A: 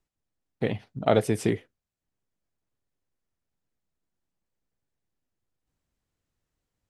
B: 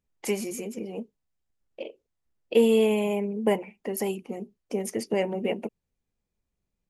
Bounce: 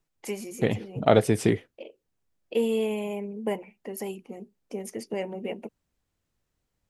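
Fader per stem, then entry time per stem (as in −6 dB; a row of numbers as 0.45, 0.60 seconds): +2.5, −5.5 decibels; 0.00, 0.00 seconds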